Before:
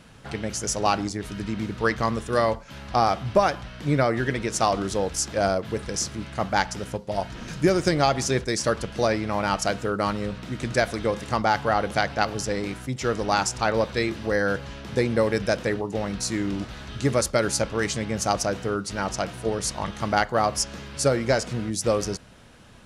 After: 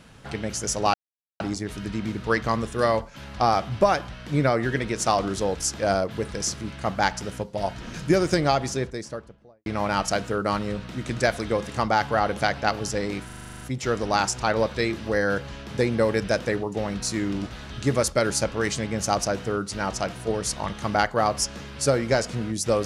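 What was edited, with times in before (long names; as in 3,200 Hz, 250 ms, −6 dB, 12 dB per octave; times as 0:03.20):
0:00.94: splice in silence 0.46 s
0:07.84–0:09.20: fade out and dull
0:12.79: stutter 0.04 s, 10 plays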